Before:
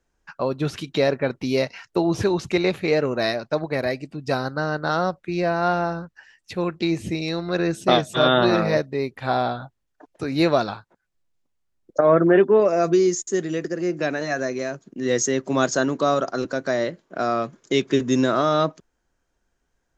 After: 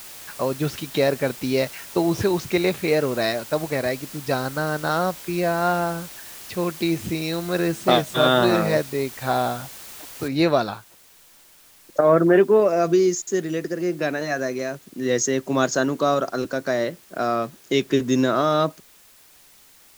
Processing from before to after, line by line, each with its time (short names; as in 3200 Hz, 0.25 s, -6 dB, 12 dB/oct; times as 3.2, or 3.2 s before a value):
10.28 noise floor step -40 dB -52 dB